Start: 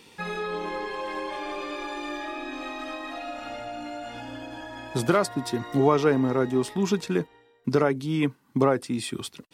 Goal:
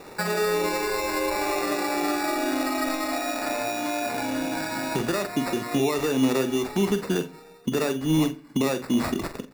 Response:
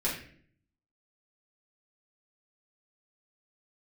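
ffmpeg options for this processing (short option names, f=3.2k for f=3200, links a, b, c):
-filter_complex "[0:a]highpass=180,equalizer=f=6.1k:t=o:w=0.4:g=-14.5,asplit=2[a][b];[b]acompressor=threshold=-35dB:ratio=6,volume=0dB[c];[a][c]amix=inputs=2:normalize=0,alimiter=limit=-19.5dB:level=0:latency=1:release=258,acrossover=split=390[d][e];[e]acompressor=threshold=-29dB:ratio=6[f];[d][f]amix=inputs=2:normalize=0,acrusher=samples=14:mix=1:aa=0.000001,asplit=2[g][h];[h]adelay=45,volume=-10dB[i];[g][i]amix=inputs=2:normalize=0,asplit=2[j][k];[1:a]atrim=start_sample=2205,adelay=37[l];[k][l]afir=irnorm=-1:irlink=0,volume=-24dB[m];[j][m]amix=inputs=2:normalize=0,volume=4.5dB"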